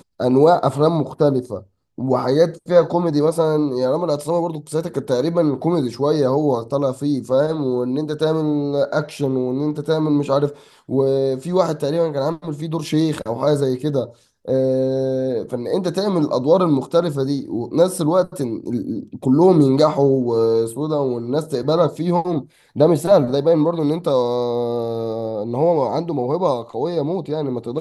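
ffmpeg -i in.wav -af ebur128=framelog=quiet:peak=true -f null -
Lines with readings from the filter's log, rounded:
Integrated loudness:
  I:         -19.1 LUFS
  Threshold: -29.2 LUFS
Loudness range:
  LRA:         3.3 LU
  Threshold: -39.3 LUFS
  LRA low:   -20.9 LUFS
  LRA high:  -17.5 LUFS
True peak:
  Peak:       -1.9 dBFS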